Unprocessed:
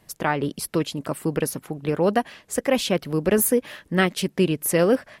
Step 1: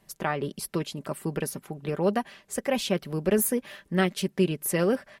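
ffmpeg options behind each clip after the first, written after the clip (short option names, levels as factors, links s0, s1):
-af "aecho=1:1:5.1:0.39,volume=0.531"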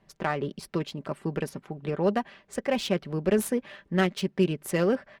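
-af "adynamicsmooth=sensitivity=5.5:basefreq=3600"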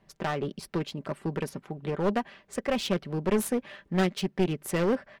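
-af "aeval=exprs='clip(val(0),-1,0.0596)':c=same"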